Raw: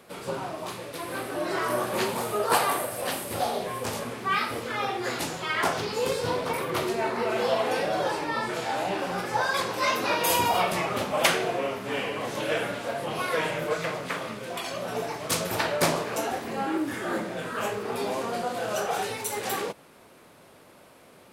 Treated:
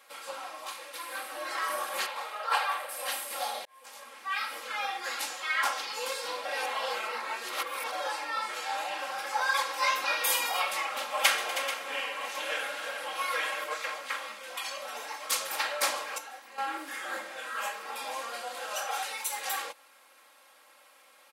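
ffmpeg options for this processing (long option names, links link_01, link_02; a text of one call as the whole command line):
ffmpeg -i in.wav -filter_complex "[0:a]asettb=1/sr,asplit=3[link_01][link_02][link_03];[link_01]atrim=end=2.064[link_04];[link_02]atrim=start=2.06:end=2.89,asetpts=PTS-STARTPTS,afade=type=in:duration=0.004:curve=qsin,afade=type=out:start_time=0.826:duration=0.004:curve=qsin,acrossover=split=400 4500:gain=0.224 1 0.158[link_05][link_06][link_07];[link_05][link_06][link_07]amix=inputs=3:normalize=0[link_08];[link_03]atrim=start=2.886[link_09];[link_04][link_08]acrossfade=duration=0.004:curve1=hsin:curve2=qsin[link_10];[link_10][link_09]acrossfade=duration=0.004:curve1=qsin:curve2=hsin,asplit=2[link_11][link_12];[link_12]afade=type=in:start_time=8.99:duration=0.01,afade=type=out:start_time=9.39:duration=0.01,aecho=0:1:230|460|690|920|1150|1380|1610|1840|2070|2300|2530:0.446684|0.312679|0.218875|0.153212|0.107249|0.0750741|0.0525519|0.0367863|0.0257504|0.0180253|0.0126177[link_13];[link_11][link_13]amix=inputs=2:normalize=0,asettb=1/sr,asplit=3[link_14][link_15][link_16];[link_14]atrim=end=10.874[link_17];[link_15]atrim=start=10.87:end=13.64,asetpts=PTS-STARTPTS,afade=type=in:duration=0.004:curve=qsin,afade=type=out:start_time=2.766:duration=0.004:curve=qsin,aecho=1:1:136|245|318|436:0.168|0.158|0.299|0.251,atrim=end_sample=122157[link_18];[link_16]atrim=start=13.636[link_19];[link_17][link_18]acrossfade=duration=0.004:curve1=hsin:curve2=qsin[link_20];[link_20][link_19]acrossfade=duration=0.004:curve1=qsin:curve2=hsin,asplit=6[link_21][link_22][link_23][link_24][link_25][link_26];[link_21]atrim=end=3.65,asetpts=PTS-STARTPTS,afade=type=out:start_time=3.646:duration=0.004:curve=hsin[link_27];[link_22]atrim=start=3.65:end=6.452,asetpts=PTS-STARTPTS,afade=type=in:duration=1.03[link_28];[link_23]atrim=start=6.448:end=7.922,asetpts=PTS-STARTPTS,areverse[link_29];[link_24]atrim=start=7.918:end=16.182[link_30];[link_25]atrim=start=16.178:end=16.582,asetpts=PTS-STARTPTS,volume=-9.5dB[link_31];[link_26]atrim=start=16.578[link_32];[link_27][link_28]concat=n=2:v=0:a=1[link_33];[link_33][link_29]acrossfade=duration=0.004:curve1=hsin:curve2=hsin[link_34];[link_34][link_30]acrossfade=duration=0.004:curve1=hsin:curve2=hsin[link_35];[link_35][link_31]acrossfade=duration=0.004:curve1=hsin:curve2=hsin[link_36];[link_36][link_32]acrossfade=duration=0.004:curve1=hsin:curve2=hsin,highpass=950,aecho=1:1:3.7:0.91,volume=-3.5dB" out.wav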